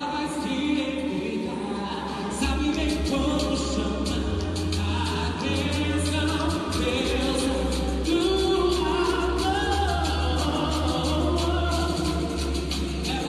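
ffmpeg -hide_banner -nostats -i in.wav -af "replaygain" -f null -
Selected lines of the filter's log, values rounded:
track_gain = +7.2 dB
track_peak = 0.186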